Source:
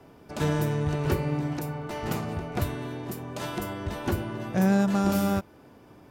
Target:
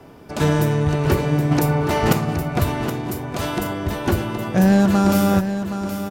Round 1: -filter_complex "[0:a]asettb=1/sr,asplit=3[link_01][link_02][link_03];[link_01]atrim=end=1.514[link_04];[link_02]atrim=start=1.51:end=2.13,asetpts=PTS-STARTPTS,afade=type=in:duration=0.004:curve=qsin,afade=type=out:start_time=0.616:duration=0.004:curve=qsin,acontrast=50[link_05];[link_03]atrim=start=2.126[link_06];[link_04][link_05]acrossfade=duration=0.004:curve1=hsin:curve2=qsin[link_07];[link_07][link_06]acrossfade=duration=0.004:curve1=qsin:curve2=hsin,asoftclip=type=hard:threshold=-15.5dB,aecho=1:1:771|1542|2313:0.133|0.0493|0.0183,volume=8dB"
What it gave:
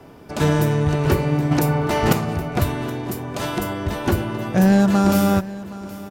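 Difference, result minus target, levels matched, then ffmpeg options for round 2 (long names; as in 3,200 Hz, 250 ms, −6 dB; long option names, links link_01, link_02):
echo-to-direct −8 dB
-filter_complex "[0:a]asettb=1/sr,asplit=3[link_01][link_02][link_03];[link_01]atrim=end=1.514[link_04];[link_02]atrim=start=1.51:end=2.13,asetpts=PTS-STARTPTS,afade=type=in:duration=0.004:curve=qsin,afade=type=out:start_time=0.616:duration=0.004:curve=qsin,acontrast=50[link_05];[link_03]atrim=start=2.126[link_06];[link_04][link_05]acrossfade=duration=0.004:curve1=hsin:curve2=qsin[link_07];[link_07][link_06]acrossfade=duration=0.004:curve1=qsin:curve2=hsin,asoftclip=type=hard:threshold=-15.5dB,aecho=1:1:771|1542|2313|3084:0.335|0.124|0.0459|0.017,volume=8dB"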